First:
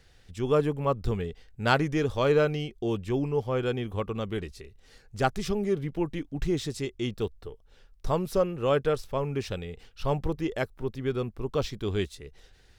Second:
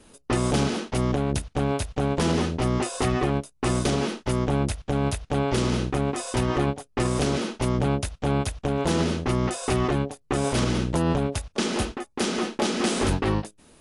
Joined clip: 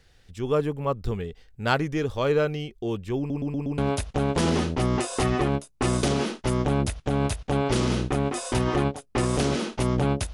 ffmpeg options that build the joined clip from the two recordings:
ffmpeg -i cue0.wav -i cue1.wav -filter_complex "[0:a]apad=whole_dur=10.33,atrim=end=10.33,asplit=5[link_01][link_02][link_03][link_04][link_05];[link_01]atrim=end=3.302[link_06];[link_02]atrim=start=3.178:end=3.302[link_07];[link_03]atrim=start=3.178:end=3.302[link_08];[link_04]atrim=start=3.178:end=3.302[link_09];[link_05]atrim=start=3.178:end=3.302[link_10];[1:a]atrim=start=1.598:end=8.15[link_11];[link_06][link_07]acrossfade=duration=0.004:curve1=hsin:curve2=hsin[link_12];[link_12][link_08]acrossfade=duration=0.004:curve1=hsin:curve2=hsin[link_13];[link_13][link_09]acrossfade=duration=0.004:curve1=hsin:curve2=hsin[link_14];[link_14][link_10]acrossfade=duration=0.004:curve1=hsin:curve2=hsin[link_15];[link_15][link_11]acrossfade=duration=0.004:curve1=hsin:curve2=hsin" out.wav

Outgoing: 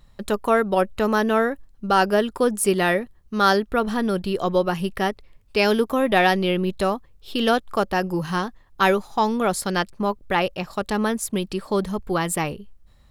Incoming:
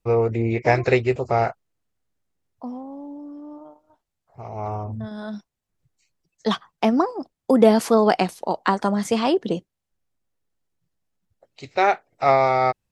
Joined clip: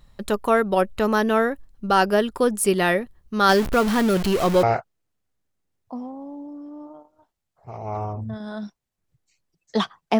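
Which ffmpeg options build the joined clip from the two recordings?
ffmpeg -i cue0.wav -i cue1.wav -filter_complex "[0:a]asettb=1/sr,asplit=3[link_01][link_02][link_03];[link_01]atrim=end=3.494[link_04];[link_02]atrim=start=3.49:end=4.63,asetpts=PTS-STARTPTS,afade=type=in:duration=0.004:curve=qsin,afade=type=out:start_time=1.136:duration=0.004:curve=qsin,aeval=exprs='val(0)+0.5*0.0794*sgn(val(0))':channel_layout=same[link_05];[link_03]atrim=start=4.626[link_06];[link_04][link_05]acrossfade=duration=0.004:curve1=hsin:curve2=qsin[link_07];[link_07][link_06]acrossfade=duration=0.004:curve1=qsin:curve2=hsin,apad=whole_dur=10.19,atrim=end=10.19,atrim=end=4.632[link_08];[1:a]atrim=start=1.338:end=6.9[link_09];[link_08][link_09]acrossfade=duration=0.004:curve1=hsin:curve2=hsin" out.wav

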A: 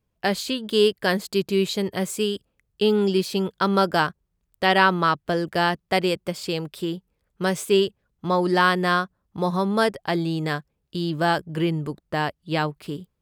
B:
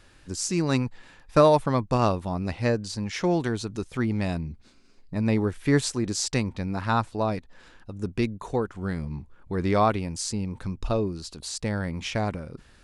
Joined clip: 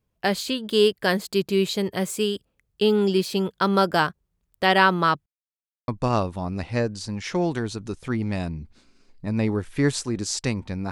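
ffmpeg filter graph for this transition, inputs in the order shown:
ffmpeg -i cue0.wav -i cue1.wav -filter_complex "[0:a]apad=whole_dur=10.91,atrim=end=10.91,asplit=2[link_01][link_02];[link_01]atrim=end=5.26,asetpts=PTS-STARTPTS,afade=type=out:start_time=5.256:duration=0.004:curve=hsin[link_03];[link_02]atrim=start=5.26:end=5.88,asetpts=PTS-STARTPTS,volume=0[link_04];[1:a]atrim=start=1.77:end=6.8,asetpts=PTS-STARTPTS,afade=type=in:duration=0.004:curve=hsin[link_05];[link_03][link_04][link_05]concat=n=3:v=0:a=1" out.wav

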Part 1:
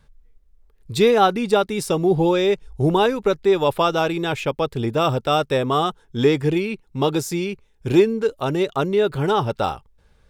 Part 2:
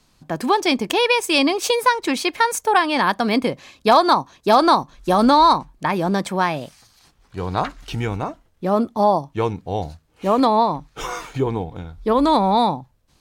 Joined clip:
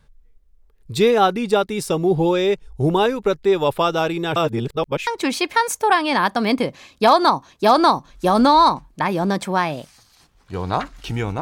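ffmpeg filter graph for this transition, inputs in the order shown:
ffmpeg -i cue0.wav -i cue1.wav -filter_complex "[0:a]apad=whole_dur=11.41,atrim=end=11.41,asplit=2[link_01][link_02];[link_01]atrim=end=4.362[link_03];[link_02]atrim=start=4.358:end=5.072,asetpts=PTS-STARTPTS,areverse[link_04];[1:a]atrim=start=1.908:end=8.25[link_05];[link_03][link_04]acrossfade=duration=0.004:curve1=hsin:curve2=hsin[link_06];[link_06][link_05]acrossfade=duration=0.004:curve1=hsin:curve2=hsin" out.wav

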